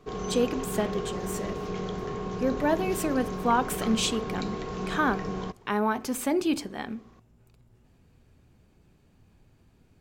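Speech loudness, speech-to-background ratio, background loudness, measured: -29.0 LUFS, 5.0 dB, -34.0 LUFS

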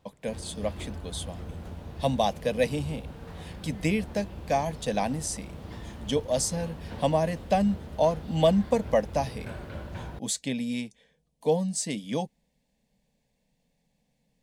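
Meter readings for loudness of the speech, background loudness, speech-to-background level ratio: -29.0 LUFS, -41.5 LUFS, 12.5 dB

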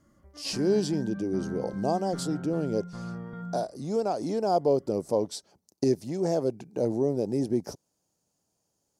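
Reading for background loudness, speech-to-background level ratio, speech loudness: -38.0 LUFS, 9.0 dB, -29.0 LUFS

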